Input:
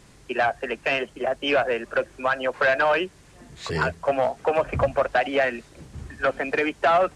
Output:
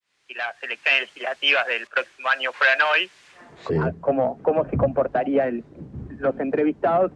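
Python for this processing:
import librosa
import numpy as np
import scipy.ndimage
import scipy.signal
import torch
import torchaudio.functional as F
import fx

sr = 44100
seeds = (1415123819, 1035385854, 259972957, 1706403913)

y = fx.fade_in_head(x, sr, length_s=1.03)
y = fx.filter_sweep_bandpass(y, sr, from_hz=2800.0, to_hz=230.0, start_s=3.27, end_s=3.79, q=0.98)
y = fx.band_widen(y, sr, depth_pct=100, at=(1.87, 2.28))
y = F.gain(torch.from_numpy(y), 8.5).numpy()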